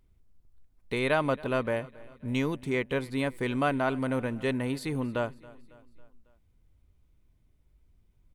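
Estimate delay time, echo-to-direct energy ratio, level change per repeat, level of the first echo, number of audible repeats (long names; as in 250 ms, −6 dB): 275 ms, −20.0 dB, −5.5 dB, −21.5 dB, 3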